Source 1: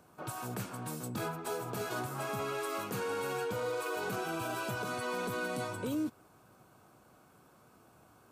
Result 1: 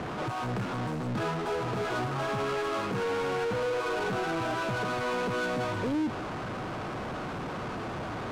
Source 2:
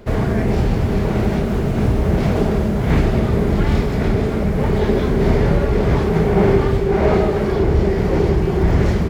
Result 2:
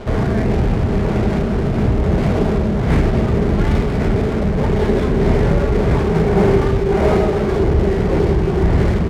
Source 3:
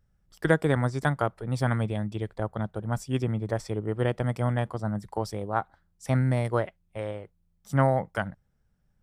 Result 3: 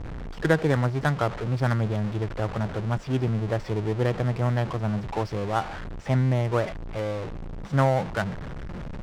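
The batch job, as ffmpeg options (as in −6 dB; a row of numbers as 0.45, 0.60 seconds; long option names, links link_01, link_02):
-af "aeval=exprs='val(0)+0.5*0.0398*sgn(val(0))':channel_layout=same,adynamicsmooth=sensitivity=4:basefreq=1200"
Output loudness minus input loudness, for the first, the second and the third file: +5.0, +1.0, +2.0 LU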